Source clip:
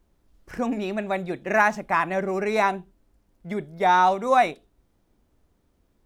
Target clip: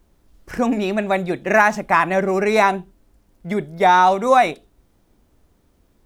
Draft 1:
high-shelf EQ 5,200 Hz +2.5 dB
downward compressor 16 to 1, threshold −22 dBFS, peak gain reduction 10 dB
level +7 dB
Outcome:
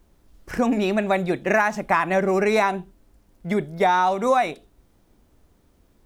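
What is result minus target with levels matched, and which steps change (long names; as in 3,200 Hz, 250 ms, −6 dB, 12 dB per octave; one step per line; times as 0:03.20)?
downward compressor: peak gain reduction +6.5 dB
change: downward compressor 16 to 1, threshold −15 dBFS, peak gain reduction 3.5 dB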